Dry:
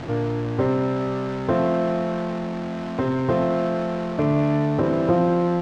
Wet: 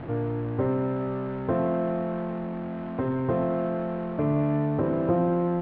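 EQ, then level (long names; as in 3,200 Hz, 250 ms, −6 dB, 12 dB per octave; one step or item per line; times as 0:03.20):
high-frequency loss of the air 430 metres
high-shelf EQ 5,000 Hz −6.5 dB
−3.5 dB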